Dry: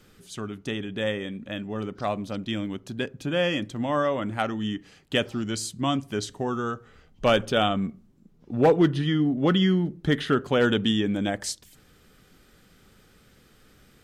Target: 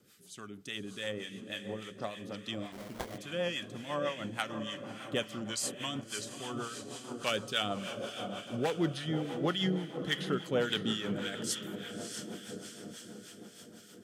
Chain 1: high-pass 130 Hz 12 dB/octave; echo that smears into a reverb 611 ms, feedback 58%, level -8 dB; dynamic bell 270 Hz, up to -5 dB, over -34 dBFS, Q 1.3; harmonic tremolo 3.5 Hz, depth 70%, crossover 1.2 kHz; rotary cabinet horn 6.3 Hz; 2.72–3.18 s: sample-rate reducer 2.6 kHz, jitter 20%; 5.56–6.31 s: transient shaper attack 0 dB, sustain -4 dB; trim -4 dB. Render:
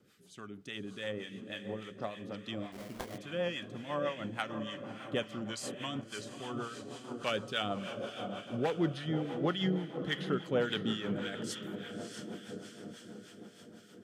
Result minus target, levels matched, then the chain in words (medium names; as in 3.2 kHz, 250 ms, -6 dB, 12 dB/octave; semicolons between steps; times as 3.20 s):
8 kHz band -7.5 dB
high-pass 130 Hz 12 dB/octave; treble shelf 4.7 kHz +12 dB; echo that smears into a reverb 611 ms, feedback 58%, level -8 dB; dynamic bell 270 Hz, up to -5 dB, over -34 dBFS, Q 1.3; harmonic tremolo 3.5 Hz, depth 70%, crossover 1.2 kHz; rotary cabinet horn 6.3 Hz; 2.72–3.18 s: sample-rate reducer 2.6 kHz, jitter 20%; 5.56–6.31 s: transient shaper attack 0 dB, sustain -4 dB; trim -4 dB